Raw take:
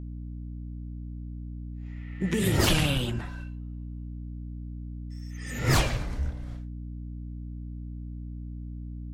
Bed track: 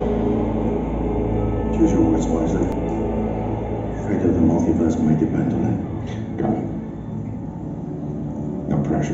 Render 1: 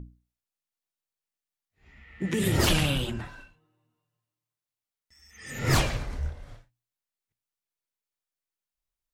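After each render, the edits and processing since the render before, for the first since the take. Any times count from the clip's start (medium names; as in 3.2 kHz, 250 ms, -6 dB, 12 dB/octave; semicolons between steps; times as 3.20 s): hum notches 60/120/180/240/300 Hz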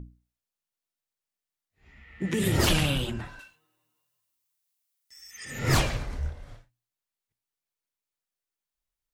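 3.39–5.45 s: tilt EQ +3.5 dB/octave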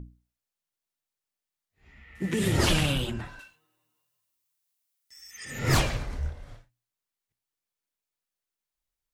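2.15–2.93 s: CVSD coder 64 kbps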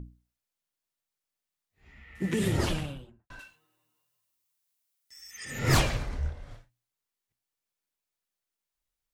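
2.18–3.30 s: studio fade out; 6.09–6.51 s: treble shelf 11 kHz -10 dB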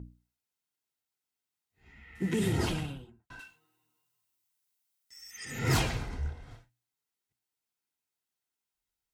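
saturation -18 dBFS, distortion -16 dB; comb of notches 580 Hz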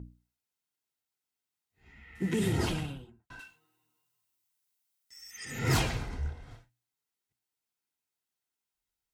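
no audible change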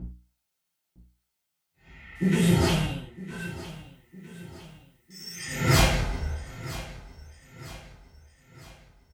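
feedback delay 958 ms, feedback 48%, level -16 dB; gated-style reverb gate 130 ms falling, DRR -7 dB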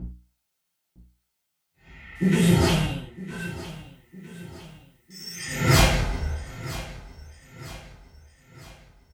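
trim +2.5 dB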